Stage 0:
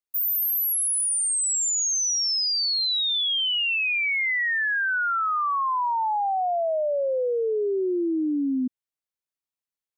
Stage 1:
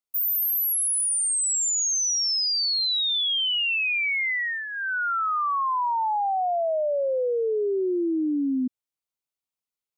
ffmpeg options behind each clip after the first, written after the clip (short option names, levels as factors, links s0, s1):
-af "equalizer=f=1700:w=7.6:g=-10"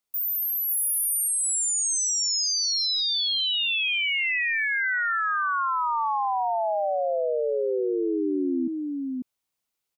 -af "alimiter=level_in=2.11:limit=0.0631:level=0:latency=1:release=11,volume=0.473,aecho=1:1:543:0.708,volume=2.11"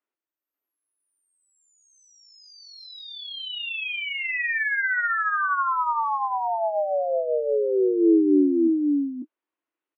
-filter_complex "[0:a]highpass=f=290:w=0.5412,highpass=f=290:w=1.3066,equalizer=f=310:t=q:w=4:g=9,equalizer=f=480:t=q:w=4:g=-4,equalizer=f=780:t=q:w=4:g=-7,equalizer=f=1300:t=q:w=4:g=-3,equalizer=f=2200:t=q:w=4:g=-6,lowpass=f=2300:w=0.5412,lowpass=f=2300:w=1.3066,asplit=2[s0][s1];[s1]adelay=21,volume=0.398[s2];[s0][s2]amix=inputs=2:normalize=0,volume=1.5"